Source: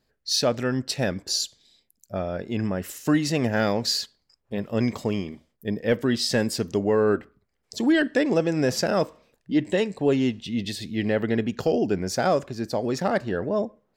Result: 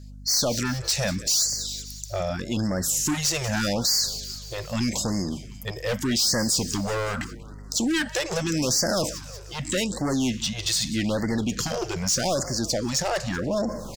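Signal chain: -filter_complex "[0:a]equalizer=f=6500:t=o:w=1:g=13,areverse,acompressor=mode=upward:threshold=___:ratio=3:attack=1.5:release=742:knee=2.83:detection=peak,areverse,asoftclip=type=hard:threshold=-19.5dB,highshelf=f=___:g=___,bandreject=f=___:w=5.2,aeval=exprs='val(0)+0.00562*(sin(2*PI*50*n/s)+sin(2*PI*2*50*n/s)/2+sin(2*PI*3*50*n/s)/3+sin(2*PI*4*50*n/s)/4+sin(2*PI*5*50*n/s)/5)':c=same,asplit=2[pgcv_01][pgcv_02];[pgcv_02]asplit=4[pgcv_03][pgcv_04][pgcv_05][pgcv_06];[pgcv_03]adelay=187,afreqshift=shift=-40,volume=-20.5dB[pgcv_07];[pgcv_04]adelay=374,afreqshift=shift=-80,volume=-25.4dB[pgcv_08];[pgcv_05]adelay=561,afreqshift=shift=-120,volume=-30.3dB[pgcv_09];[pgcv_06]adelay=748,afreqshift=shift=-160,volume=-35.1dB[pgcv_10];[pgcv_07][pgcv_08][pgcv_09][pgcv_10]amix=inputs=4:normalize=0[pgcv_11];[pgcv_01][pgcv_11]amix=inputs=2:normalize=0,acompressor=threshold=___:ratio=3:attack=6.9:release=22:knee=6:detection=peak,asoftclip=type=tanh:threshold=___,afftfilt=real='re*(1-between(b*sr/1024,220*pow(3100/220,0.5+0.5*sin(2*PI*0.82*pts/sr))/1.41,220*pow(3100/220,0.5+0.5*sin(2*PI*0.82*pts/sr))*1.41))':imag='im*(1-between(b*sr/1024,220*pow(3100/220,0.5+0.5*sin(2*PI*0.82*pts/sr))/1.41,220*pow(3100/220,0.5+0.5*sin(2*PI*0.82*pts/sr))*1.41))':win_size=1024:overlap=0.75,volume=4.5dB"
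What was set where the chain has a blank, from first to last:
-22dB, 3400, 7, 420, -27dB, -21dB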